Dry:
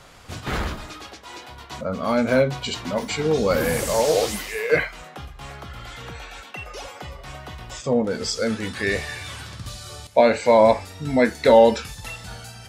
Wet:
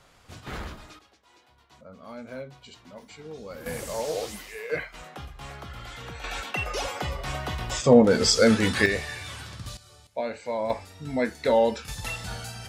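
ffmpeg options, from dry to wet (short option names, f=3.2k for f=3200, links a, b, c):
-af "asetnsamples=n=441:p=0,asendcmd='0.99 volume volume -20dB;3.66 volume volume -10.5dB;4.94 volume volume -3dB;6.24 volume volume 5.5dB;8.86 volume volume -3.5dB;9.77 volume volume -15dB;10.7 volume volume -8dB;11.88 volume volume 1.5dB',volume=-10dB"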